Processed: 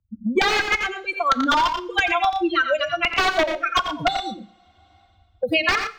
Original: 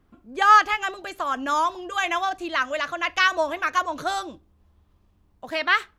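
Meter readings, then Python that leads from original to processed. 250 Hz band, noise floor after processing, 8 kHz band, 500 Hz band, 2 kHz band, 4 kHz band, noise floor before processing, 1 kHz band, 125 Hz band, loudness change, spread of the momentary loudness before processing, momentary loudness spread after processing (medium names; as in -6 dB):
+9.5 dB, -59 dBFS, +1.5 dB, +6.0 dB, +2.0 dB, +5.5 dB, -63 dBFS, 0.0 dB, no reading, +1.5 dB, 15 LU, 6 LU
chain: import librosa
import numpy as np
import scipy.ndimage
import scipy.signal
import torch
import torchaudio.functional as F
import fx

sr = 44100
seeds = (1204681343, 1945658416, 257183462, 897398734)

p1 = fx.bin_expand(x, sr, power=3.0)
p2 = fx.highpass(p1, sr, hz=190.0, slope=6)
p3 = fx.over_compress(p2, sr, threshold_db=-26.0, ratio=-0.5)
p4 = p2 + F.gain(torch.from_numpy(p3), -3.0).numpy()
p5 = (np.mod(10.0 ** (16.5 / 20.0) * p4 + 1.0, 2.0) - 1.0) / 10.0 ** (16.5 / 20.0)
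p6 = fx.air_absorb(p5, sr, metres=210.0)
p7 = fx.echo_multitap(p6, sr, ms=(86, 117), db=(-9.5, -13.5))
p8 = fx.rev_double_slope(p7, sr, seeds[0], early_s=0.47, late_s=1.7, knee_db=-27, drr_db=14.5)
p9 = fx.band_squash(p8, sr, depth_pct=100)
y = F.gain(torch.from_numpy(p9), 7.0).numpy()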